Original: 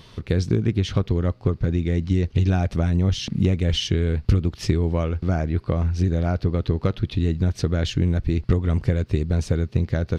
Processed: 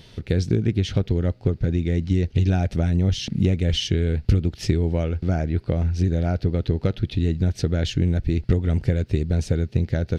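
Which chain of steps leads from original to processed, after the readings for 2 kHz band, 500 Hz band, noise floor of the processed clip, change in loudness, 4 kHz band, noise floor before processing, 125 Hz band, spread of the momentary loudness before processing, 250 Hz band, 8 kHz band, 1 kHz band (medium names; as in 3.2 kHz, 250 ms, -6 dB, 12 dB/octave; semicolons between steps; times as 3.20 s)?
-1.0 dB, -0.5 dB, -48 dBFS, 0.0 dB, 0.0 dB, -48 dBFS, 0.0 dB, 3 LU, 0.0 dB, no reading, -3.0 dB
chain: peaking EQ 1.1 kHz -14.5 dB 0.31 oct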